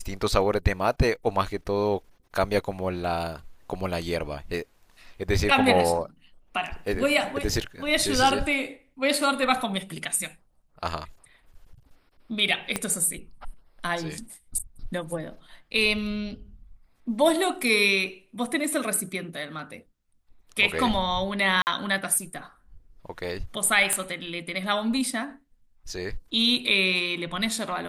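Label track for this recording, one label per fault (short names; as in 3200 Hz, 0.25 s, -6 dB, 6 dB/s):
12.760000	12.760000	pop -10 dBFS
21.620000	21.670000	gap 49 ms
23.930000	23.930000	pop -9 dBFS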